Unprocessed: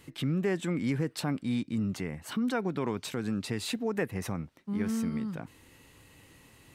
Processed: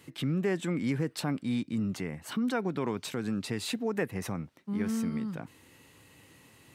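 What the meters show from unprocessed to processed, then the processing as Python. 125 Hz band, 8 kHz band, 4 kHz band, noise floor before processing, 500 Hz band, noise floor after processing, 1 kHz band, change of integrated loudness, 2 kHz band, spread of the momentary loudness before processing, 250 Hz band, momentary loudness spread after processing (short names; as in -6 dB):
-1.0 dB, 0.0 dB, 0.0 dB, -58 dBFS, 0.0 dB, -59 dBFS, 0.0 dB, 0.0 dB, 0.0 dB, 7 LU, 0.0 dB, 7 LU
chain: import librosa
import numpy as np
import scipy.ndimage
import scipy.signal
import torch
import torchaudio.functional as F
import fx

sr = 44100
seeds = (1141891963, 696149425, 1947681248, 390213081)

y = scipy.signal.sosfilt(scipy.signal.butter(2, 91.0, 'highpass', fs=sr, output='sos'), x)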